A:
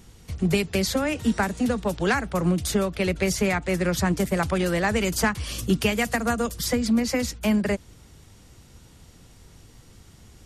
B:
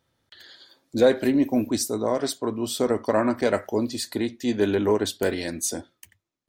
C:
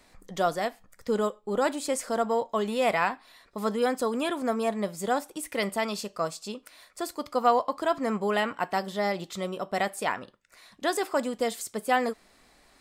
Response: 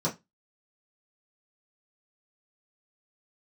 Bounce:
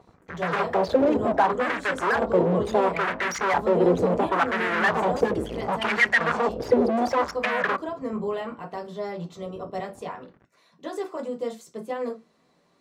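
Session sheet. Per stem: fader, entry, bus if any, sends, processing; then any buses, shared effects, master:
+1.5 dB, 0.00 s, send −23 dB, spectral envelope exaggerated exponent 3; fuzz pedal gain 41 dB, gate −48 dBFS; LFO wah 0.7 Hz 440–1,800 Hz, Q 2.4
−20.0 dB, 0.00 s, no send, low-pass filter 1,700 Hz 12 dB per octave
−12.0 dB, 0.00 s, send −3.5 dB, brickwall limiter −18 dBFS, peak gain reduction 8 dB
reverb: on, pre-delay 3 ms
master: no processing

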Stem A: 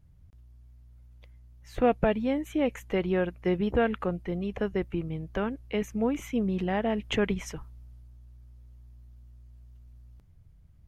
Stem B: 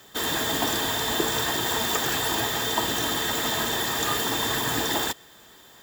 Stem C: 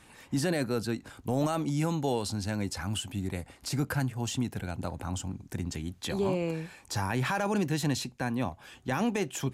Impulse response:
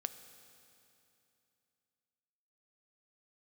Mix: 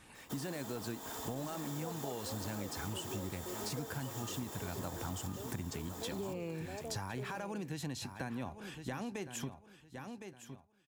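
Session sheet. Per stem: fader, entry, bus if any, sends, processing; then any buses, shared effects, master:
−5.0 dB, 0.00 s, no send, no echo send, four-pole ladder band-pass 520 Hz, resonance 35%
−10.5 dB, 0.15 s, no send, echo send −3.5 dB, Butterworth high-pass 180 Hz; flat-topped bell 2,600 Hz −9.5 dB; soft clipping −28.5 dBFS, distortion −10 dB
−4.0 dB, 0.00 s, no send, echo send −13.5 dB, speech leveller 0.5 s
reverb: not used
echo: repeating echo 1,061 ms, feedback 21%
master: downward compressor, threshold −37 dBFS, peak gain reduction 10 dB

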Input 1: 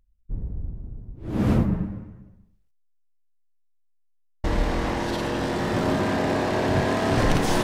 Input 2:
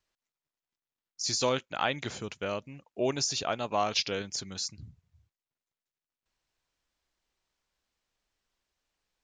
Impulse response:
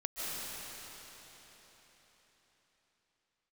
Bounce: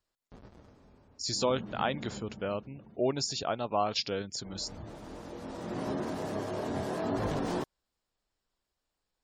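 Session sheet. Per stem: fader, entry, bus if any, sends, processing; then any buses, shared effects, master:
−7.5 dB, 0.00 s, send −10 dB, hold until the input has moved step −24.5 dBFS; high-pass filter 150 Hz 6 dB per octave; micro pitch shift up and down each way 19 cents; automatic ducking −18 dB, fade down 1.25 s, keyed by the second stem
+0.5 dB, 0.00 s, no send, notch filter 6,100 Hz, Q 5.9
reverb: on, RT60 4.4 s, pre-delay 110 ms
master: gate on every frequency bin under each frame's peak −30 dB strong; parametric band 2,400 Hz −7 dB 1.4 octaves

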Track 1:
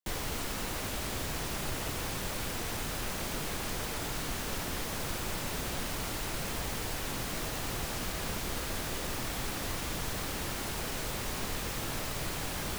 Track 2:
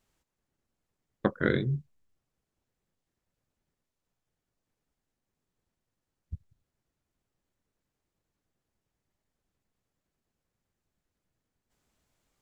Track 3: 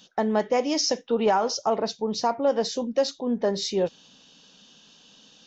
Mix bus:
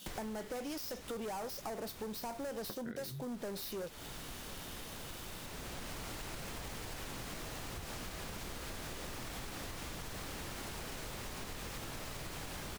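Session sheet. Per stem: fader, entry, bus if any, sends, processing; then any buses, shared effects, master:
+0.5 dB, 0.00 s, bus A, no send, high-shelf EQ 11,000 Hz −4.5 dB; automatic ducking −11 dB, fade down 0.40 s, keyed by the third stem
+0.5 dB, 1.45 s, bus A, no send, no processing
−1.0 dB, 0.00 s, no bus, no send, gap after every zero crossing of 0.065 ms; high-shelf EQ 4,300 Hz +10 dB; soft clipping −26.5 dBFS, distortion −8 dB
bus A: 0.0 dB, downward compressor, threshold −36 dBFS, peak gain reduction 16 dB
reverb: not used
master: downward compressor 6 to 1, threshold −40 dBFS, peak gain reduction 11.5 dB

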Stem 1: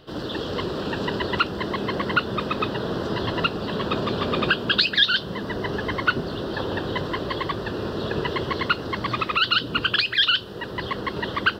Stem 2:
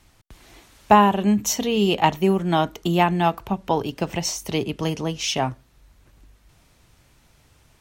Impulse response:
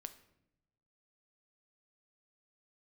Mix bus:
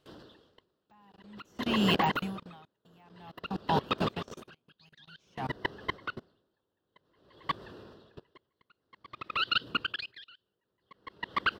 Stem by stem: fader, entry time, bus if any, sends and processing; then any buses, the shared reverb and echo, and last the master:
+2.0 dB, 0.00 s, no send, echo send −21.5 dB, low-shelf EQ 230 Hz −2.5 dB; brickwall limiter −17 dBFS, peak gain reduction 11 dB
+1.0 dB, 0.00 s, no send, no echo send, high-pass filter 48 Hz 12 dB per octave; de-essing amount 65%; elliptic band-stop filter 260–720 Hz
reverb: not used
echo: single-tap delay 190 ms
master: output level in coarse steps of 24 dB; tremolo with a sine in dB 0.52 Hz, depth 36 dB

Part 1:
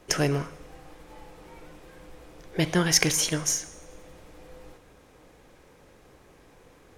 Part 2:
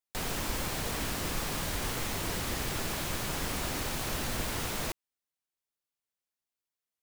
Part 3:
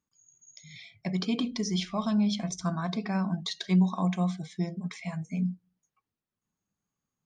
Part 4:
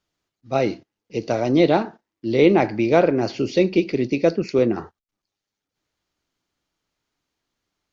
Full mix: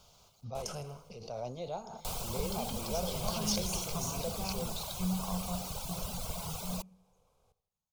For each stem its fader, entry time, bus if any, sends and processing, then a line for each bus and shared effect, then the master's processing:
−14.0 dB, 0.55 s, no send, echo send −16 dB, background raised ahead of every attack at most 33 dB per second
−0.5 dB, 1.90 s, no send, no echo send, reverb reduction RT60 1.7 s
−7.0 dB, 1.30 s, no send, echo send −12 dB, no processing
−19.0 dB, 0.00 s, no send, no echo send, background raised ahead of every attack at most 22 dB per second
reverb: not used
echo: repeating echo 81 ms, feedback 44%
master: phaser with its sweep stopped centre 750 Hz, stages 4

